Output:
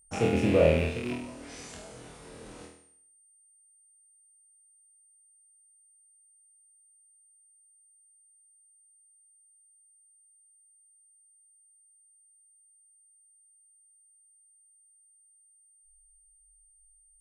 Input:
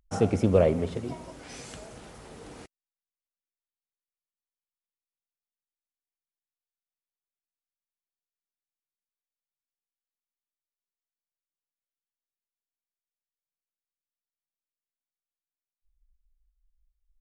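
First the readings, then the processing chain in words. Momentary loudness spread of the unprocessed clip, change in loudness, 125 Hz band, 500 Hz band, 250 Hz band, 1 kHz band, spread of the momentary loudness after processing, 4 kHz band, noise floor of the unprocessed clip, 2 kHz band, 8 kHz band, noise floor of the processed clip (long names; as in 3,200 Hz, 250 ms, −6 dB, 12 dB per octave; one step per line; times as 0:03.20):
21 LU, −3.0 dB, −1.5 dB, 0.0 dB, −0.5 dB, −0.5 dB, 25 LU, +4.0 dB, below −85 dBFS, +7.5 dB, +2.5 dB, −63 dBFS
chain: loose part that buzzes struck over −32 dBFS, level −22 dBFS
flutter between parallel walls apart 4.2 metres, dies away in 0.62 s
steady tone 8,800 Hz −55 dBFS
level −4.5 dB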